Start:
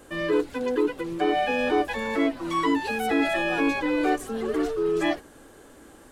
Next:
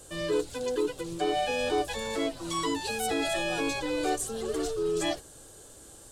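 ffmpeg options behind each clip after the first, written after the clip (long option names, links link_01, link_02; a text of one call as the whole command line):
ffmpeg -i in.wav -af "equalizer=frequency=125:width_type=o:width=1:gain=5,equalizer=frequency=250:width_type=o:width=1:gain=-11,equalizer=frequency=1000:width_type=o:width=1:gain=-5,equalizer=frequency=2000:width_type=o:width=1:gain=-9,equalizer=frequency=4000:width_type=o:width=1:gain=4,equalizer=frequency=8000:width_type=o:width=1:gain=10" out.wav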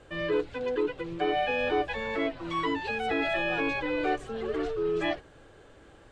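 ffmpeg -i in.wav -af "lowpass=frequency=2200:width_type=q:width=1.8" out.wav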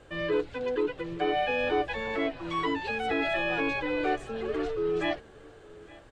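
ffmpeg -i in.wav -af "aecho=1:1:861:0.0794" out.wav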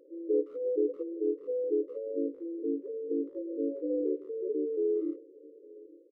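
ffmpeg -i in.wav -filter_complex "[0:a]afftfilt=real='re*between(b*sr/4096,270,570)':imag='im*between(b*sr/4096,270,570)':win_size=4096:overlap=0.75,asplit=2[link_01][link_02];[link_02]adelay=160,highpass=300,lowpass=3400,asoftclip=type=hard:threshold=-26dB,volume=-21dB[link_03];[link_01][link_03]amix=inputs=2:normalize=0" out.wav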